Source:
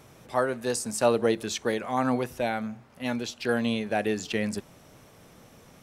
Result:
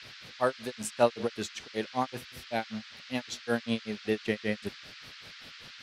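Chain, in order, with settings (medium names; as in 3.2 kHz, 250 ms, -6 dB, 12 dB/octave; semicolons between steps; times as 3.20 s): granulator 149 ms, grains 5.2 per s, pitch spread up and down by 0 st; band noise 1.3–4.9 kHz -49 dBFS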